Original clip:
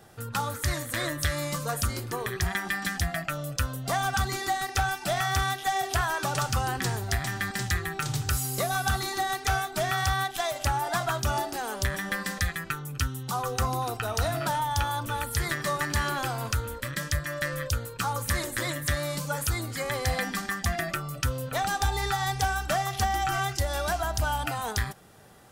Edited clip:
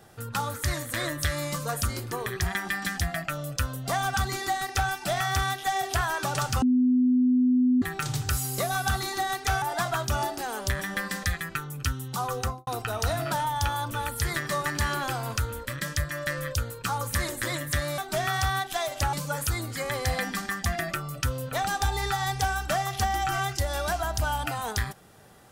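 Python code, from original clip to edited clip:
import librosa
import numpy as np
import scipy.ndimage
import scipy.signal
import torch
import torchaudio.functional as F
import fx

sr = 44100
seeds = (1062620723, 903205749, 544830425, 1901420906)

y = fx.studio_fade_out(x, sr, start_s=13.53, length_s=0.29)
y = fx.edit(y, sr, fx.bleep(start_s=6.62, length_s=1.2, hz=251.0, db=-18.0),
    fx.move(start_s=9.62, length_s=1.15, to_s=19.13), tone=tone)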